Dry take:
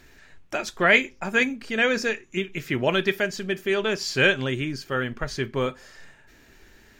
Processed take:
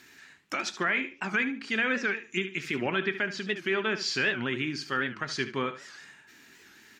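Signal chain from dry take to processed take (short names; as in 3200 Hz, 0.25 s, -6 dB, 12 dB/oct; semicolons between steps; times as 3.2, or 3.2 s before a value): treble ducked by the level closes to 2100 Hz, closed at -20 dBFS; HPF 240 Hz 12 dB/oct; bell 560 Hz -13 dB 1.1 oct; limiter -20 dBFS, peak gain reduction 10.5 dB; feedback echo 73 ms, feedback 22%, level -12.5 dB; record warp 78 rpm, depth 160 cents; gain +2.5 dB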